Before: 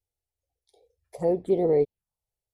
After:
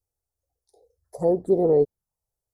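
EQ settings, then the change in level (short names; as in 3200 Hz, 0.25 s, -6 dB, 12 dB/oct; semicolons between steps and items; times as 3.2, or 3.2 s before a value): Butterworth band-stop 2700 Hz, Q 0.74; +3.0 dB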